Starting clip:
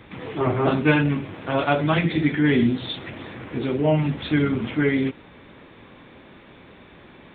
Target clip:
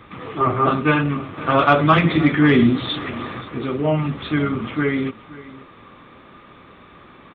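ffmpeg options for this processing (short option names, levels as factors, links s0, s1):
-filter_complex "[0:a]equalizer=f=1200:t=o:w=0.23:g=14.5,asettb=1/sr,asplit=3[s0][s1][s2];[s0]atrim=end=1.374[s3];[s1]atrim=start=1.37:end=3.41,asetpts=PTS-STARTPTS,afade=t=in:d=0.004:c=qsin,afade=t=out:st=2.036:d=0.004:c=qsin,acontrast=25[s4];[s2]atrim=start=3.406[s5];[s3][s4]acrossfade=d=0.004:c1=hsin:c2=qsin[s6];[s6][s5]acrossfade=d=0.004:c1=qsin:c2=hsin,aecho=1:1:526:0.112"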